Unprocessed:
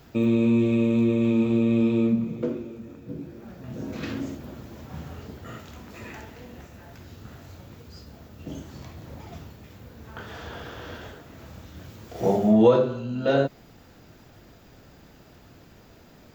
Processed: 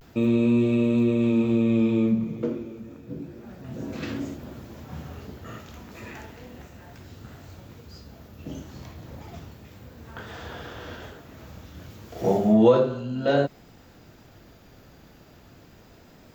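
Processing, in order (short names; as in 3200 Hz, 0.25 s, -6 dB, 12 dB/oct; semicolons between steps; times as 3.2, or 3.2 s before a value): vibrato 0.32 Hz 40 cents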